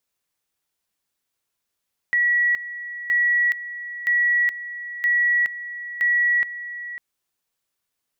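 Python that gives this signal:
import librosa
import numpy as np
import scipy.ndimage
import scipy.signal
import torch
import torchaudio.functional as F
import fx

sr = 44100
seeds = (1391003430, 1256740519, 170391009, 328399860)

y = fx.two_level_tone(sr, hz=1930.0, level_db=-16.0, drop_db=14.0, high_s=0.42, low_s=0.55, rounds=5)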